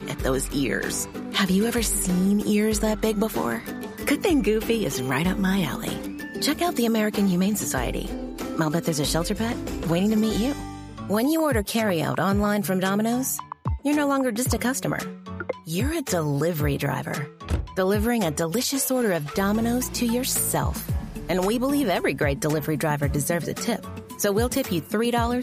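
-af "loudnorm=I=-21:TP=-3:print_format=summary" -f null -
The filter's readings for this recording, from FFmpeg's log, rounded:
Input Integrated:    -24.4 LUFS
Input True Peak:      -8.5 dBTP
Input LRA:             1.8 LU
Input Threshold:     -34.5 LUFS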